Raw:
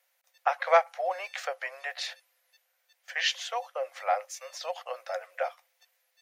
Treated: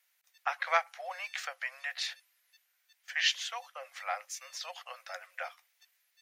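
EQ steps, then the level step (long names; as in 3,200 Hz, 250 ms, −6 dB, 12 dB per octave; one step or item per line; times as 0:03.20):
high-pass filter 1,300 Hz 12 dB per octave
0.0 dB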